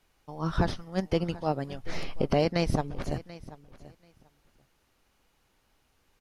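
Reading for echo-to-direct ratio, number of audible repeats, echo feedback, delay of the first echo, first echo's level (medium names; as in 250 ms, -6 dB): -18.0 dB, 2, 16%, 736 ms, -18.0 dB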